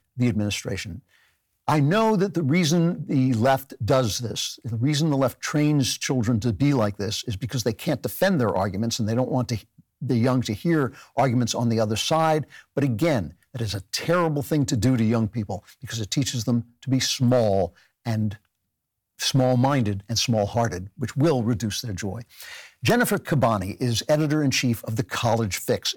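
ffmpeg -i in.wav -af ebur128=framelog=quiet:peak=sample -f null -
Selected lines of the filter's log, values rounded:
Integrated loudness:
  I:         -23.6 LUFS
  Threshold: -33.9 LUFS
Loudness range:
  LRA:         2.1 LU
  Threshold: -43.9 LUFS
  LRA low:   -24.9 LUFS
  LRA high:  -22.7 LUFS
Sample peak:
  Peak:      -11.6 dBFS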